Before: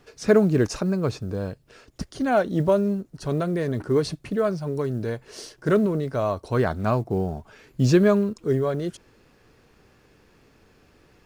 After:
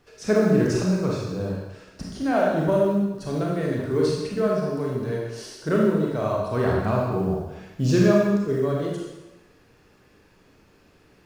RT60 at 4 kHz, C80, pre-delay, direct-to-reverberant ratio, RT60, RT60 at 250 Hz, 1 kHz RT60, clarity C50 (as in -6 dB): 1.0 s, 2.5 dB, 27 ms, -3.5 dB, 1.1 s, 0.95 s, 1.1 s, -0.5 dB